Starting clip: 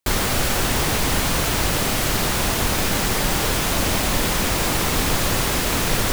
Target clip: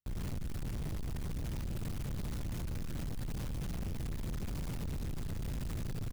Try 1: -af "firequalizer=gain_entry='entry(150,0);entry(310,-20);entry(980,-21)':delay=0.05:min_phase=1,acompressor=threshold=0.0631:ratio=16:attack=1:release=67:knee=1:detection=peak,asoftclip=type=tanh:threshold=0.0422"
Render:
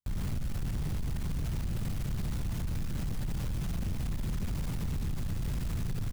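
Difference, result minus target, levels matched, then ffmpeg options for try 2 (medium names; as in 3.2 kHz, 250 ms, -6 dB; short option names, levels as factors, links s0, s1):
saturation: distortion -7 dB
-af "firequalizer=gain_entry='entry(150,0);entry(310,-20);entry(980,-21)':delay=0.05:min_phase=1,acompressor=threshold=0.0631:ratio=16:attack=1:release=67:knee=1:detection=peak,asoftclip=type=tanh:threshold=0.0178"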